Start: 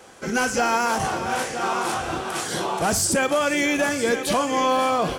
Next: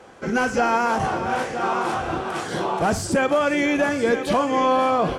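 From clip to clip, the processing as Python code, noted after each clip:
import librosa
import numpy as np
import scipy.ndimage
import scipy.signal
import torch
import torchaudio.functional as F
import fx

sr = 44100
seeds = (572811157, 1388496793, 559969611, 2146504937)

y = fx.lowpass(x, sr, hz=1800.0, slope=6)
y = y * 10.0 ** (2.5 / 20.0)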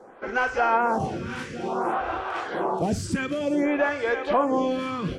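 y = fx.high_shelf(x, sr, hz=5900.0, db=-10.5)
y = fx.stagger_phaser(y, sr, hz=0.56)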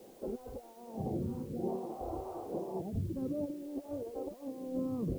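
y = fx.over_compress(x, sr, threshold_db=-28.0, ratio=-0.5)
y = scipy.ndimage.gaussian_filter1d(y, 14.0, mode='constant')
y = fx.quant_dither(y, sr, seeds[0], bits=10, dither='triangular')
y = y * 10.0 ** (-5.0 / 20.0)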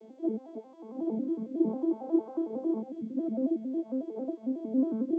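y = fx.vocoder_arp(x, sr, chord='minor triad', root=57, every_ms=91)
y = fx.small_body(y, sr, hz=(340.0, 2200.0, 3300.0), ring_ms=45, db=10)
y = y * 10.0 ** (4.0 / 20.0)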